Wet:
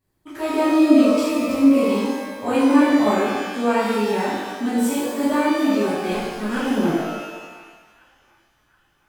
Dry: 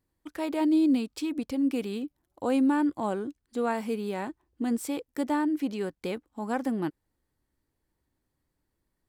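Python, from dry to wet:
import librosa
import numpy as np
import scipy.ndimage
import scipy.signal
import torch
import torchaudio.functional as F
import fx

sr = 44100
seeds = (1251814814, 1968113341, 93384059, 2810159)

y = fx.lower_of_two(x, sr, delay_ms=0.57, at=(6.12, 6.57))
y = fx.echo_banded(y, sr, ms=722, feedback_pct=52, hz=1600.0, wet_db=-20.0)
y = fx.rev_shimmer(y, sr, seeds[0], rt60_s=1.2, semitones=12, shimmer_db=-8, drr_db=-11.0)
y = y * librosa.db_to_amplitude(-1.5)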